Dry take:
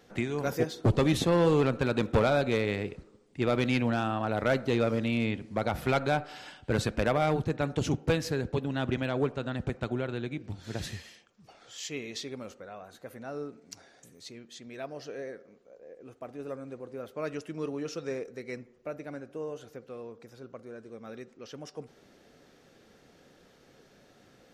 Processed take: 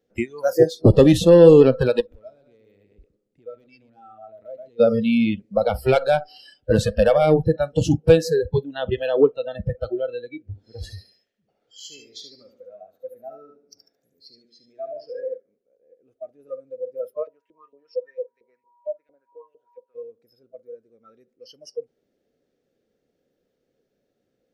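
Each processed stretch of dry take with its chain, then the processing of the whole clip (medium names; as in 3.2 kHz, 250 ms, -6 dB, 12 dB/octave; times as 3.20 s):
2.00–4.80 s: delay 118 ms -7.5 dB + compression 12:1, threshold -38 dBFS
10.42–15.34 s: treble shelf 3.3 kHz -10 dB + thinning echo 73 ms, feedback 57%, high-pass 200 Hz, level -4 dB
17.22–19.94 s: LFO band-pass saw up 4.4 Hz 440–3000 Hz + whistle 960 Hz -53 dBFS + tape noise reduction on one side only encoder only
whole clip: bass shelf 120 Hz +4.5 dB; spectral noise reduction 27 dB; graphic EQ 250/500/1000 Hz +4/+10/-7 dB; trim +6.5 dB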